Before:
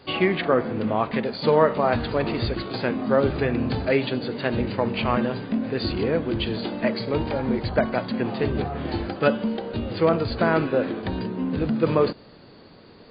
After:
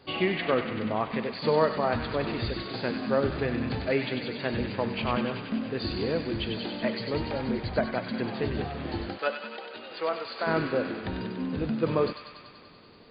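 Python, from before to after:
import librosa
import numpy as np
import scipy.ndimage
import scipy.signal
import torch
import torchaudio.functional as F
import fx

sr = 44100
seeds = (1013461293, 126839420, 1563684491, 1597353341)

y = fx.highpass(x, sr, hz=610.0, slope=12, at=(9.17, 10.46), fade=0.02)
y = fx.echo_wet_highpass(y, sr, ms=96, feedback_pct=76, hz=1700.0, wet_db=-4.5)
y = y * 10.0 ** (-5.5 / 20.0)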